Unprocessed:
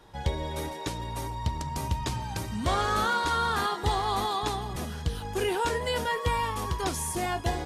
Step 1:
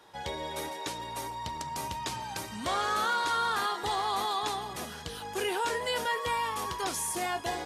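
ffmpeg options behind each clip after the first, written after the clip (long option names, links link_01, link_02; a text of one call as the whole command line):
ffmpeg -i in.wav -filter_complex "[0:a]highpass=frequency=530:poles=1,asplit=2[link_01][link_02];[link_02]alimiter=level_in=0.5dB:limit=-24dB:level=0:latency=1:release=27,volume=-0.5dB,volume=2dB[link_03];[link_01][link_03]amix=inputs=2:normalize=0,volume=-6dB" out.wav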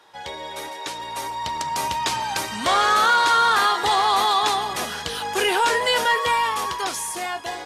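ffmpeg -i in.wav -filter_complex "[0:a]dynaudnorm=framelen=210:gausssize=13:maxgain=9dB,asplit=2[link_01][link_02];[link_02]highpass=frequency=720:poles=1,volume=9dB,asoftclip=type=tanh:threshold=-8.5dB[link_03];[link_01][link_03]amix=inputs=2:normalize=0,lowpass=frequency=6900:poles=1,volume=-6dB" out.wav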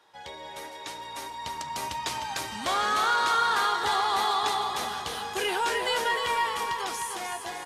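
ffmpeg -i in.wav -af "aecho=1:1:305|610|915|1220|1525|1830:0.501|0.256|0.13|0.0665|0.0339|0.0173,volume=-8dB" out.wav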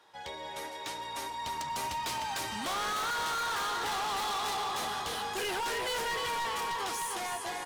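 ffmpeg -i in.wav -af "volume=31.5dB,asoftclip=hard,volume=-31.5dB" out.wav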